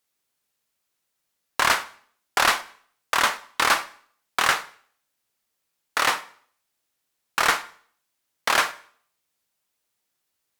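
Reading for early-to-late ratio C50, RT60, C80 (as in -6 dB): 17.0 dB, 0.55 s, 20.5 dB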